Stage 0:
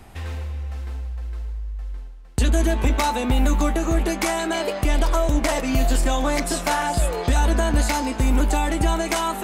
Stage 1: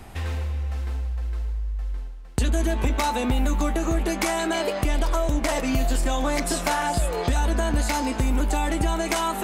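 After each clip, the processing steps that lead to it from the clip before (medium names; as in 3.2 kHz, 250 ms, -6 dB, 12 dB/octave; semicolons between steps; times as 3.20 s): compression 2:1, threshold -26 dBFS, peak gain reduction 6.5 dB; trim +2.5 dB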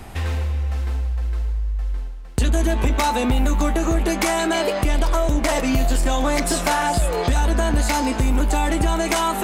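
saturation -14.5 dBFS, distortion -23 dB; trim +5 dB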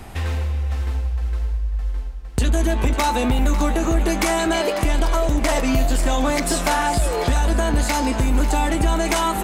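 delay 547 ms -13 dB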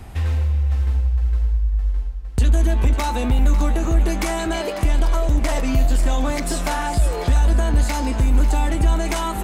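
peaking EQ 62 Hz +8.5 dB 2.4 oct; trim -4.5 dB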